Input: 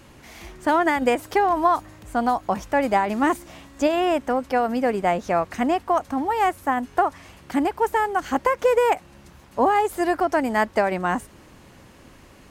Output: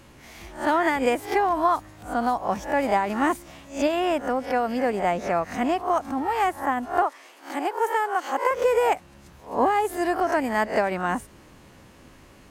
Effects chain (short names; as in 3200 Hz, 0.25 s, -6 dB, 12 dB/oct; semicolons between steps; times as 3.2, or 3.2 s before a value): spectral swells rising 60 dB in 0.34 s; 7.02–8.51 HPF 350 Hz 24 dB/oct; gain -3 dB